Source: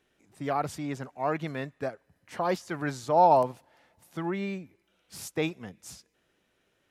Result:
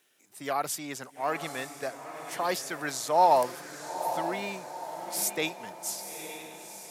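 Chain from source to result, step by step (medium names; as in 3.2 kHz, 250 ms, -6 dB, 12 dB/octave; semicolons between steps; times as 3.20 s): high-pass 87 Hz; RIAA curve recording; wow and flutter 26 cents; on a send: echo that smears into a reverb 904 ms, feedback 50%, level -9.5 dB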